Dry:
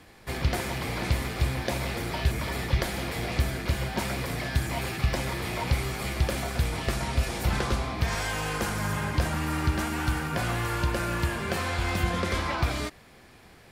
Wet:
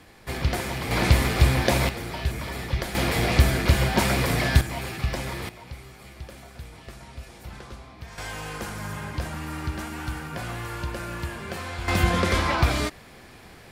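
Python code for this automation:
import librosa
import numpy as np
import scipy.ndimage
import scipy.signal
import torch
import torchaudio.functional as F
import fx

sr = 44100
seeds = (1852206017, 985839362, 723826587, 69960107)

y = fx.gain(x, sr, db=fx.steps((0.0, 1.5), (0.91, 8.0), (1.89, -1.5), (2.95, 8.0), (4.61, -1.0), (5.49, -14.0), (8.18, -4.5), (11.88, 5.5)))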